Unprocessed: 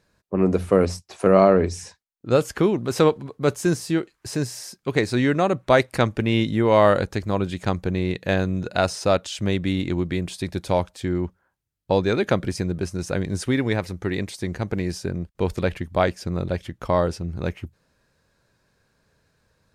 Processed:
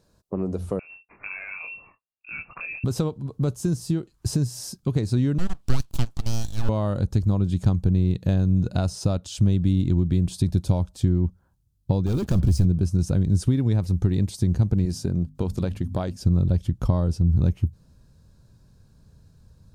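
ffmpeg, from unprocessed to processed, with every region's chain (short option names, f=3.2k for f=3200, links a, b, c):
-filter_complex "[0:a]asettb=1/sr,asplit=3[a][b][c];[a]atrim=end=0.794[d];[b]atrim=start=0.79:end=2.84,asetpts=PTS-STARTPTS,afade=t=in:d=0.004:c=qsin,afade=t=out:st=2.046:d=0.004:c=qsin,acompressor=threshold=-21dB:ratio=6:attack=3.2:release=140:knee=1:detection=peak,flanger=delay=18.5:depth=5:speed=2.4,lowpass=f=2.4k:t=q:w=0.5098,lowpass=f=2.4k:t=q:w=0.6013,lowpass=f=2.4k:t=q:w=0.9,lowpass=f=2.4k:t=q:w=2.563,afreqshift=-2800[e];[c]atrim=start=2.836[f];[d][e]acrossfade=d=0.004:c1=hsin:c2=qsin[g];[g][f]acrossfade=d=0.004:c1=qsin:c2=hsin,asettb=1/sr,asplit=3[h][i][j];[h]atrim=end=5.384[k];[i]atrim=start=5.38:end=6.69,asetpts=PTS-STARTPTS,afade=t=in:d=0.004:c=qsin,afade=t=out:st=1.306:d=0.004:c=qsin,highpass=780,aeval=exprs='abs(val(0))':c=same[l];[j]atrim=start=6.686[m];[k][l]acrossfade=d=0.004:c1=hsin:c2=qsin[n];[n][m]acrossfade=d=0.004:c1=qsin:c2=hsin,asettb=1/sr,asplit=3[o][p][q];[o]atrim=end=12.064[r];[p]atrim=start=12.06:end=12.65,asetpts=PTS-STARTPTS,afade=t=in:d=0.004:c=qsin,afade=t=out:st=0.586:d=0.004:c=qsin,equalizer=f=69:w=2.8:g=13,asoftclip=type=hard:threshold=-22dB,acrusher=bits=6:mix=0:aa=0.5[s];[q]atrim=start=12.646[t];[r][s]acrossfade=d=0.004:c1=hsin:c2=qsin[u];[u][t]acrossfade=d=0.004:c1=qsin:c2=hsin,asettb=1/sr,asplit=3[v][w][x];[v]atrim=end=14.854[y];[w]atrim=start=14.85:end=16.17,asetpts=PTS-STARTPTS,afade=t=in:d=0.004:c=qsin,afade=t=out:st=1.316:d=0.004:c=qsin,lowshelf=f=140:g=-11.5,bandreject=f=50:t=h:w=6,bandreject=f=100:t=h:w=6,bandreject=f=150:t=h:w=6,bandreject=f=200:t=h:w=6,bandreject=f=250:t=h:w=6[z];[x]atrim=start=16.166[aa];[y][z]acrossfade=d=0.004:c1=hsin:c2=qsin[ab];[ab][aa]acrossfade=d=0.004:c1=qsin:c2=hsin,equalizer=f=2k:t=o:w=1.1:g=-14,acompressor=threshold=-32dB:ratio=3,asubboost=boost=5:cutoff=200,volume=4dB"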